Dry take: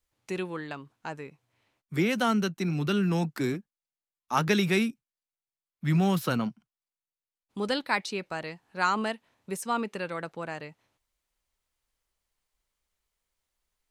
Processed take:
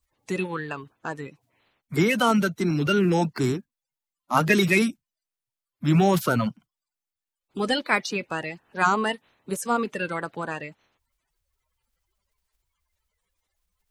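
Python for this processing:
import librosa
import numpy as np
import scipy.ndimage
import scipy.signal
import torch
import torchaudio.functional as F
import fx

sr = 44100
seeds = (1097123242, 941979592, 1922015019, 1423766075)

y = fx.spec_quant(x, sr, step_db=30)
y = y * librosa.db_to_amplitude(5.5)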